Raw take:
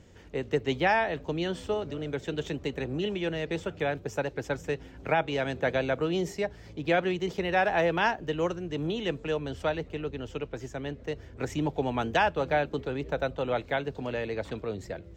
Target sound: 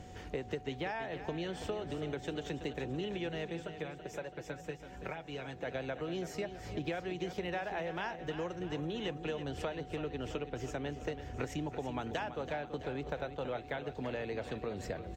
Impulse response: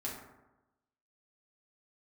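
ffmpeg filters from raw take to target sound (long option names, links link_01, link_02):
-filter_complex "[0:a]acompressor=threshold=-39dB:ratio=16,aeval=exprs='val(0)+0.00112*sin(2*PI*740*n/s)':channel_layout=same,asplit=3[link_01][link_02][link_03];[link_01]afade=type=out:start_time=3.47:duration=0.02[link_04];[link_02]flanger=delay=4.9:depth=1.9:regen=34:speed=1.2:shape=triangular,afade=type=in:start_time=3.47:duration=0.02,afade=type=out:start_time=5.64:duration=0.02[link_05];[link_03]afade=type=in:start_time=5.64:duration=0.02[link_06];[link_04][link_05][link_06]amix=inputs=3:normalize=0,aecho=1:1:331|662|993|1324|1655|1986:0.282|0.147|0.0762|0.0396|0.0206|0.0107,volume=4.5dB" -ar 48000 -c:a aac -b:a 64k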